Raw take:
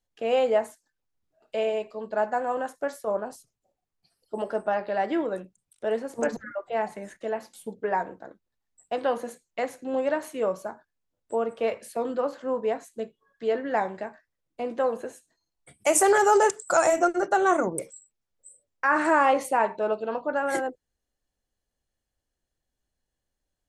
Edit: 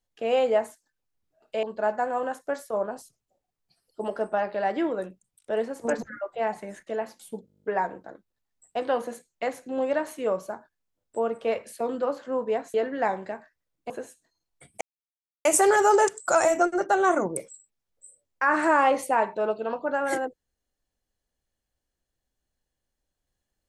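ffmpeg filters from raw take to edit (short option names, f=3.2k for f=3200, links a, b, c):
-filter_complex "[0:a]asplit=14[a][b][c][d][e][f][g][h][i][j][k][l][m][n];[a]atrim=end=1.632[o];[b]atrim=start=1.968:end=7.822[p];[c]atrim=start=7.798:end=7.822[q];[d]atrim=start=7.798:end=7.822[r];[e]atrim=start=7.798:end=7.822[s];[f]atrim=start=7.798:end=7.822[t];[g]atrim=start=7.798:end=7.822[u];[h]atrim=start=7.798:end=7.822[v];[i]atrim=start=7.798:end=7.822[w];[j]atrim=start=7.798:end=7.822[x];[k]atrim=start=7.798:end=12.902[y];[l]atrim=start=13.458:end=14.622[z];[m]atrim=start=14.958:end=15.87,asetpts=PTS-STARTPTS,afade=t=out:st=0.908:d=0.004:c=hsin,apad=pad_dur=0.64[aa];[n]atrim=start=15.87,asetpts=PTS-STARTPTS,afade=t=in:d=0.004:c=hsin[ab];[o][p]acrossfade=d=0.004:c1=hsin:c2=hsin[ac];[ac][q]acrossfade=d=0.004:c1=hsin:c2=hsin[ad];[ad][r]acrossfade=d=0.004:c1=hsin:c2=hsin[ae];[ae][s]acrossfade=d=0.004:c1=hsin:c2=hsin[af];[af][t]acrossfade=d=0.004:c1=hsin:c2=hsin[ag];[ag][u]acrossfade=d=0.004:c1=hsin:c2=hsin[ah];[ah][v]acrossfade=d=0.004:c1=hsin:c2=hsin[ai];[ai][w]acrossfade=d=0.004:c1=hsin:c2=hsin[aj];[aj][x]acrossfade=d=0.004:c1=hsin:c2=hsin[ak];[ak][y]acrossfade=d=0.004:c1=hsin:c2=hsin[al];[al][z]acrossfade=d=0.004:c1=hsin:c2=hsin[am];[aa][ab]concat=n=2:v=0:a=1[an];[am][an]acrossfade=d=0.004:c1=hsin:c2=hsin"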